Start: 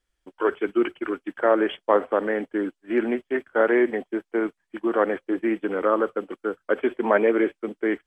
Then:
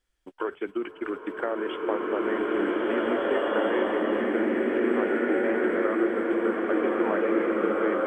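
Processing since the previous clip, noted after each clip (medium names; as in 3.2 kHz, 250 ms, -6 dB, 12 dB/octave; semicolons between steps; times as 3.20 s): compression, threshold -27 dBFS, peak gain reduction 13.5 dB; swelling reverb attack 2030 ms, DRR -6.5 dB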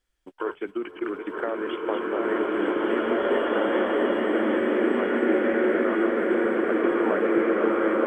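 backward echo that repeats 461 ms, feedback 72%, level -5 dB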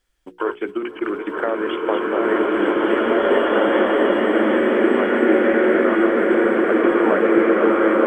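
hum notches 60/120/180/240/300/360/420/480 Hz; trim +7 dB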